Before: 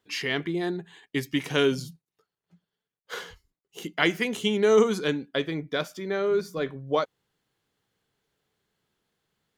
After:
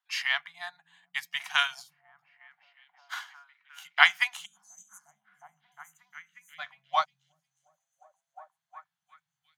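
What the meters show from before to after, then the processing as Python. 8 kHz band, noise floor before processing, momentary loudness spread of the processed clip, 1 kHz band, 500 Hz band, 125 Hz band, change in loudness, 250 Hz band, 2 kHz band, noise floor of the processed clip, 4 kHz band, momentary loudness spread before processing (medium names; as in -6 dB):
-4.5 dB, under -85 dBFS, 21 LU, +2.0 dB, -23.0 dB, under -30 dB, -1.0 dB, under -40 dB, +3.5 dB, under -85 dBFS, +0.5 dB, 17 LU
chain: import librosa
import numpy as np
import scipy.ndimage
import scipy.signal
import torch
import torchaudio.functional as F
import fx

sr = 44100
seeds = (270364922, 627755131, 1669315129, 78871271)

y = fx.filter_sweep_highpass(x, sr, from_hz=950.0, to_hz=150.0, start_s=6.14, end_s=9.15, q=1.3)
y = fx.spec_erase(y, sr, start_s=4.45, length_s=2.14, low_hz=310.0, high_hz=6000.0)
y = scipy.signal.sosfilt(scipy.signal.cheby1(4, 1.0, [170.0, 720.0], 'bandstop', fs=sr, output='sos'), y)
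y = fx.echo_stepped(y, sr, ms=358, hz=150.0, octaves=0.7, feedback_pct=70, wet_db=-2.0)
y = fx.upward_expand(y, sr, threshold_db=-51.0, expansion=1.5)
y = y * 10.0 ** (5.5 / 20.0)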